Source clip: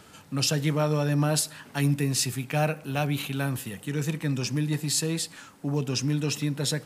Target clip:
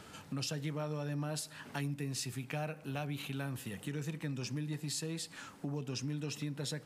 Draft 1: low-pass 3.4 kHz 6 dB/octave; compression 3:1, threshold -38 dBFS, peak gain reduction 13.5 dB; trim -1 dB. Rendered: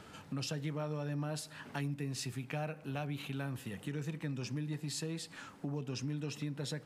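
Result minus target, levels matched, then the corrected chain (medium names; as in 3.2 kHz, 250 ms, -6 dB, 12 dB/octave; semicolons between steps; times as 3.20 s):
8 kHz band -3.0 dB
low-pass 7.8 kHz 6 dB/octave; compression 3:1, threshold -38 dBFS, peak gain reduction 13.5 dB; trim -1 dB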